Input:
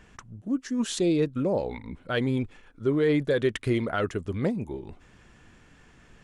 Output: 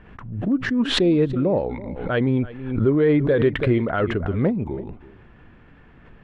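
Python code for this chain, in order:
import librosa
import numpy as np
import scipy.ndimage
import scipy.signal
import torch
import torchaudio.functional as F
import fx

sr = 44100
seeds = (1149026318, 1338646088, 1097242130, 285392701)

p1 = fx.air_absorb(x, sr, metres=470.0)
p2 = p1 + fx.echo_single(p1, sr, ms=330, db=-18.0, dry=0)
p3 = fx.pre_swell(p2, sr, db_per_s=66.0)
y = p3 * librosa.db_to_amplitude(6.5)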